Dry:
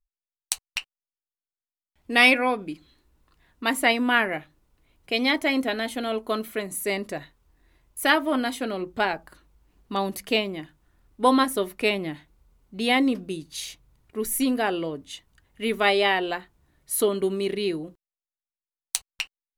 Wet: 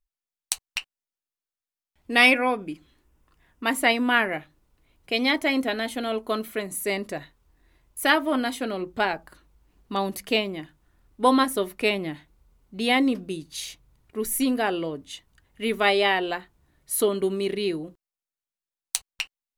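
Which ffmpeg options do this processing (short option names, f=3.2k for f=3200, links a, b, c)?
-filter_complex "[0:a]asettb=1/sr,asplit=3[a][b][c];[a]atrim=end=2.264[d];[b]atrim=start=2.26:end=3.71,asetpts=PTS-STARTPTS,afade=t=in:d=0.004:c=qsin,afade=t=out:st=1.446:d=0.004:c=qsin,equalizer=f=4.1k:w=5.8:g=-9.5[e];[c]atrim=start=3.706[f];[d][e]acrossfade=d=0.004:c1=hsin:c2=qsin[g];[g][f]acrossfade=d=0.004:c1=qsin:c2=hsin"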